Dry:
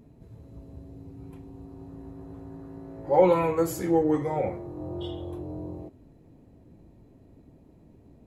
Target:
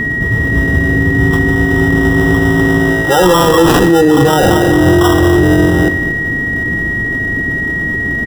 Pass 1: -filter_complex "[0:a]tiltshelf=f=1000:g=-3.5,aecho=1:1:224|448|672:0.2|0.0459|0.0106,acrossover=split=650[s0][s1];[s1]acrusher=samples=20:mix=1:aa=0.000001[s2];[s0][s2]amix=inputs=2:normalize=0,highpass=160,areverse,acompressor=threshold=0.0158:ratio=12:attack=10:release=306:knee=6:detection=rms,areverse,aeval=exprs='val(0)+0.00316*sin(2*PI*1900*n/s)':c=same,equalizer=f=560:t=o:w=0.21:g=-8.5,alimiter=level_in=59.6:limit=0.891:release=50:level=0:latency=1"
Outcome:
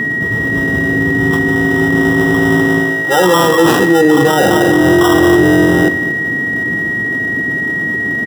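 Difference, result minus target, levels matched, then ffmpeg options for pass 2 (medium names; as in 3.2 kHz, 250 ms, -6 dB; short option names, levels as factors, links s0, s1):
compression: peak gain reduction +6 dB; 125 Hz band -5.0 dB
-filter_complex "[0:a]tiltshelf=f=1000:g=-3.5,aecho=1:1:224|448|672:0.2|0.0459|0.0106,acrossover=split=650[s0][s1];[s1]acrusher=samples=20:mix=1:aa=0.000001[s2];[s0][s2]amix=inputs=2:normalize=0,areverse,acompressor=threshold=0.0335:ratio=12:attack=10:release=306:knee=6:detection=rms,areverse,aeval=exprs='val(0)+0.00316*sin(2*PI*1900*n/s)':c=same,equalizer=f=560:t=o:w=0.21:g=-8.5,alimiter=level_in=59.6:limit=0.891:release=50:level=0:latency=1"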